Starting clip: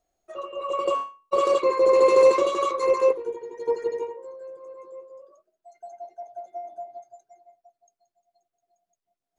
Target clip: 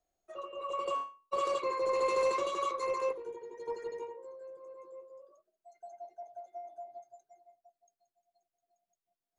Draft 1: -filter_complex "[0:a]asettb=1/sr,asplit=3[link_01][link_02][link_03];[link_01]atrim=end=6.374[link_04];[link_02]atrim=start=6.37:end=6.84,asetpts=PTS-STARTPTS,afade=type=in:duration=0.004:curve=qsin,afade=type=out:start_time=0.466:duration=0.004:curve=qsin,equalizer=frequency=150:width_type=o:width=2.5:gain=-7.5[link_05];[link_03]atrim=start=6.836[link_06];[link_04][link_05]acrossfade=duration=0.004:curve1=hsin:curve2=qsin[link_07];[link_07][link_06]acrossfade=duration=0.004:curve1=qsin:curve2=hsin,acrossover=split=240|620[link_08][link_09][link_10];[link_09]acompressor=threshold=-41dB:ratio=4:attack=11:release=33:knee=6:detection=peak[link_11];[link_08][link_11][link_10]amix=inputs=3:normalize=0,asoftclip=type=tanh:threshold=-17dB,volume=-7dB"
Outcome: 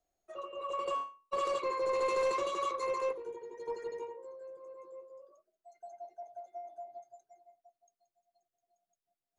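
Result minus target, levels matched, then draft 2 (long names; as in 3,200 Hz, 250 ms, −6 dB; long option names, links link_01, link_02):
soft clipping: distortion +12 dB
-filter_complex "[0:a]asettb=1/sr,asplit=3[link_01][link_02][link_03];[link_01]atrim=end=6.374[link_04];[link_02]atrim=start=6.37:end=6.84,asetpts=PTS-STARTPTS,afade=type=in:duration=0.004:curve=qsin,afade=type=out:start_time=0.466:duration=0.004:curve=qsin,equalizer=frequency=150:width_type=o:width=2.5:gain=-7.5[link_05];[link_03]atrim=start=6.836[link_06];[link_04][link_05]acrossfade=duration=0.004:curve1=hsin:curve2=qsin[link_07];[link_07][link_06]acrossfade=duration=0.004:curve1=qsin:curve2=hsin,acrossover=split=240|620[link_08][link_09][link_10];[link_09]acompressor=threshold=-41dB:ratio=4:attack=11:release=33:knee=6:detection=peak[link_11];[link_08][link_11][link_10]amix=inputs=3:normalize=0,asoftclip=type=tanh:threshold=-10dB,volume=-7dB"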